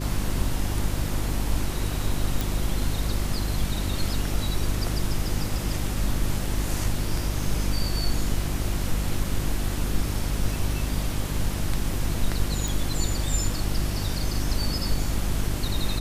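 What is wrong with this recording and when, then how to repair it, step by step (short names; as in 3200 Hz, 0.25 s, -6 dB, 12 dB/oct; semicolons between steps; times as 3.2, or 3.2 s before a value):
hum 50 Hz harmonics 7 -29 dBFS
2.41 pop
12.68 pop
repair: de-click; de-hum 50 Hz, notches 7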